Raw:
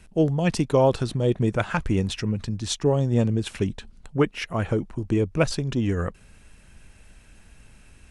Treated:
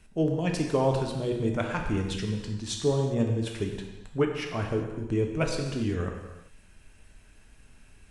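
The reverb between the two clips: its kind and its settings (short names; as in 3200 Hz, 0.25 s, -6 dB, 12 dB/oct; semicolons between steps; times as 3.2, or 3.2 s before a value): non-linear reverb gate 0.42 s falling, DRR 1.5 dB; gain -6.5 dB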